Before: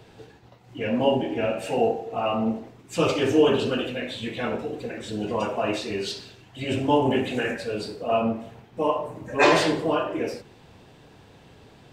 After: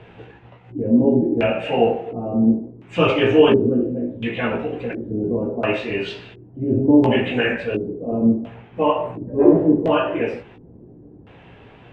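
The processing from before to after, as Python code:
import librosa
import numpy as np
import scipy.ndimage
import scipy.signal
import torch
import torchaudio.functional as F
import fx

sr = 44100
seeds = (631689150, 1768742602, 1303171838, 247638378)

y = fx.peak_eq(x, sr, hz=4500.0, db=-11.0, octaves=0.95)
y = fx.filter_lfo_lowpass(y, sr, shape='square', hz=0.71, low_hz=340.0, high_hz=2800.0, q=1.9)
y = fx.doubler(y, sr, ms=17.0, db=-6)
y = F.gain(torch.from_numpy(y), 4.5).numpy()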